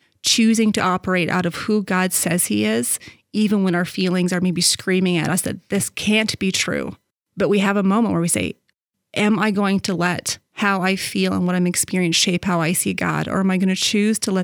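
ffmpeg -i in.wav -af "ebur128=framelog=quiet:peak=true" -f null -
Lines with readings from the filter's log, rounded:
Integrated loudness:
  I:         -19.0 LUFS
  Threshold: -29.2 LUFS
Loudness range:
  LRA:         1.7 LU
  Threshold: -39.5 LUFS
  LRA low:   -20.3 LUFS
  LRA high:  -18.6 LUFS
True peak:
  Peak:       -3.9 dBFS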